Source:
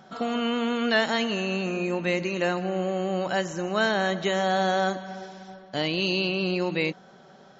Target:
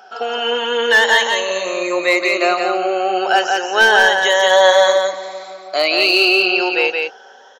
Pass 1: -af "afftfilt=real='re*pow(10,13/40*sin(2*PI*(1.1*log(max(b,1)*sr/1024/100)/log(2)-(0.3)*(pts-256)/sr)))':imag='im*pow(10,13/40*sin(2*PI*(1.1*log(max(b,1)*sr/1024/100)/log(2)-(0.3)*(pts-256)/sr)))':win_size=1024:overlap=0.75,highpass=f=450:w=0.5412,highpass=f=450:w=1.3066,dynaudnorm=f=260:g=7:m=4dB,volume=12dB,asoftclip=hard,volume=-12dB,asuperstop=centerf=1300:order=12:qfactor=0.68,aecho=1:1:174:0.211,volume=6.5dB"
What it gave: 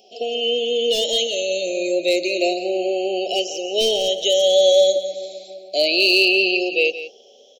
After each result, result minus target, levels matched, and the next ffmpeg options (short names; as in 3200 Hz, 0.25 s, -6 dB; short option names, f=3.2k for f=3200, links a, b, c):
1000 Hz band -11.5 dB; echo-to-direct -9.5 dB
-af "afftfilt=real='re*pow(10,13/40*sin(2*PI*(1.1*log(max(b,1)*sr/1024/100)/log(2)-(0.3)*(pts-256)/sr)))':imag='im*pow(10,13/40*sin(2*PI*(1.1*log(max(b,1)*sr/1024/100)/log(2)-(0.3)*(pts-256)/sr)))':win_size=1024:overlap=0.75,highpass=f=450:w=0.5412,highpass=f=450:w=1.3066,dynaudnorm=f=260:g=7:m=4dB,volume=12dB,asoftclip=hard,volume=-12dB,aecho=1:1:174:0.211,volume=6.5dB"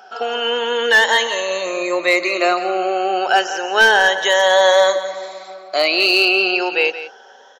echo-to-direct -9.5 dB
-af "afftfilt=real='re*pow(10,13/40*sin(2*PI*(1.1*log(max(b,1)*sr/1024/100)/log(2)-(0.3)*(pts-256)/sr)))':imag='im*pow(10,13/40*sin(2*PI*(1.1*log(max(b,1)*sr/1024/100)/log(2)-(0.3)*(pts-256)/sr)))':win_size=1024:overlap=0.75,highpass=f=450:w=0.5412,highpass=f=450:w=1.3066,dynaudnorm=f=260:g=7:m=4dB,volume=12dB,asoftclip=hard,volume=-12dB,aecho=1:1:174:0.631,volume=6.5dB"